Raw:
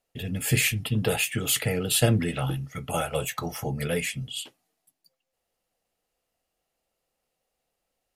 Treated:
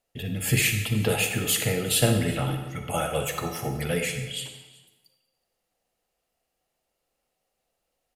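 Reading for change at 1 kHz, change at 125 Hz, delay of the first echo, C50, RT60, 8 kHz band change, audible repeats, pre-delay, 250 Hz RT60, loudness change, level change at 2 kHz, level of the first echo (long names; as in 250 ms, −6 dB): +1.5 dB, +0.5 dB, 373 ms, 5.5 dB, 1.2 s, +1.0 dB, 1, 36 ms, 1.1 s, +1.0 dB, +1.0 dB, −22.0 dB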